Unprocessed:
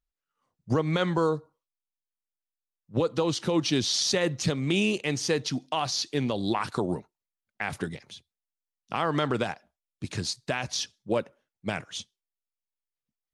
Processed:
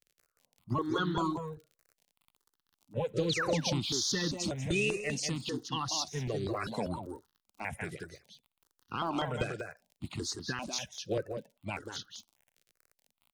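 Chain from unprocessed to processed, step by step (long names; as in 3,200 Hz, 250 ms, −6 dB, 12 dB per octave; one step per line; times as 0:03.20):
spectral magnitudes quantised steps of 30 dB
surface crackle 31 per second −42 dBFS
in parallel at −11.5 dB: soft clipping −26 dBFS, distortion −10 dB
on the sum: sound drawn into the spectrogram fall, 0:03.29–0:03.55, 410–4,800 Hz −27 dBFS
on a send: single-tap delay 190 ms −6.5 dB
on the sum: step-sequenced phaser 5.1 Hz 250–2,300 Hz
level −4 dB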